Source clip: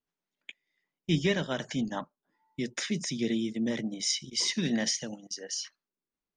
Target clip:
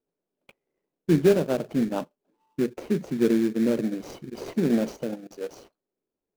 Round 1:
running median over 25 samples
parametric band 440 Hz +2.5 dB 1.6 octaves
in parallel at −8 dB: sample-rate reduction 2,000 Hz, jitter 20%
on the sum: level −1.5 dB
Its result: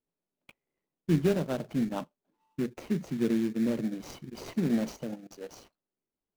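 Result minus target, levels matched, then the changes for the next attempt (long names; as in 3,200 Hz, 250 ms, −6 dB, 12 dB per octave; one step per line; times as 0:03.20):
500 Hz band −3.0 dB
change: parametric band 440 Hz +12 dB 1.6 octaves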